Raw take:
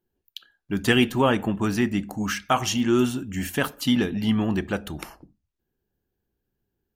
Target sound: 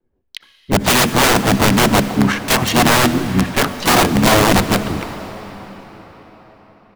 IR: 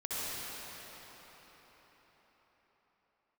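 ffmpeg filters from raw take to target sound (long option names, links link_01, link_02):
-filter_complex "[0:a]adynamicequalizer=threshold=0.0178:dfrequency=200:dqfactor=1.8:tfrequency=200:tqfactor=1.8:attack=5:release=100:ratio=0.375:range=2.5:mode=boostabove:tftype=bell,adynamicsmooth=sensitivity=2.5:basefreq=1700,aeval=exprs='(mod(6.68*val(0)+1,2)-1)/6.68':channel_layout=same,asplit=3[link_01][link_02][link_03];[link_02]asetrate=29433,aresample=44100,atempo=1.49831,volume=-8dB[link_04];[link_03]asetrate=58866,aresample=44100,atempo=0.749154,volume=-7dB[link_05];[link_01][link_04][link_05]amix=inputs=3:normalize=0,asplit=2[link_06][link_07];[1:a]atrim=start_sample=2205[link_08];[link_07][link_08]afir=irnorm=-1:irlink=0,volume=-16dB[link_09];[link_06][link_09]amix=inputs=2:normalize=0,volume=7.5dB"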